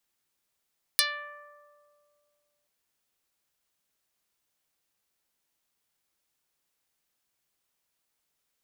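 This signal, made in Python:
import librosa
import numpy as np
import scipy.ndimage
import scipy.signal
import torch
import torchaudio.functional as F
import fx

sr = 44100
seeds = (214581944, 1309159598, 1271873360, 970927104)

y = fx.pluck(sr, length_s=1.68, note=74, decay_s=2.46, pick=0.08, brightness='dark')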